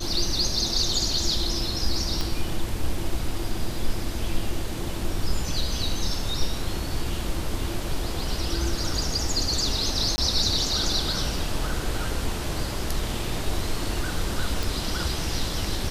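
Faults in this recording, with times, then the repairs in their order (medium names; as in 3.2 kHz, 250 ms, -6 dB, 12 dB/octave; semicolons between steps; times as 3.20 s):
2.21 s: pop -13 dBFS
10.16–10.18 s: dropout 20 ms
14.63 s: pop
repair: de-click; interpolate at 10.16 s, 20 ms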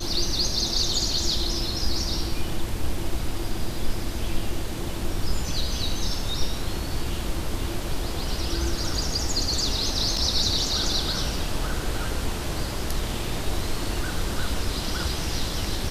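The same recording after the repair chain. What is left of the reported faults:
2.21 s: pop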